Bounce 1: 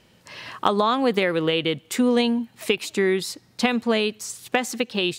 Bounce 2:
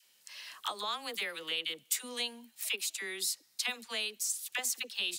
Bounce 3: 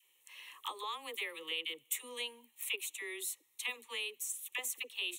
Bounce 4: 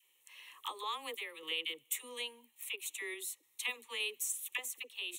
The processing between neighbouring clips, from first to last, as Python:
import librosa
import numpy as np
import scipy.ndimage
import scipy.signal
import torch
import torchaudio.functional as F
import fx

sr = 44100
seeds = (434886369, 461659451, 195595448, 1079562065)

y1 = np.diff(x, prepend=0.0)
y1 = fx.dispersion(y1, sr, late='lows', ms=55.0, hz=690.0)
y2 = fx.fixed_phaser(y1, sr, hz=1000.0, stages=8)
y2 = y2 * 10.0 ** (-1.5 / 20.0)
y3 = fx.tremolo_random(y2, sr, seeds[0], hz=3.5, depth_pct=55)
y3 = y3 * 10.0 ** (3.0 / 20.0)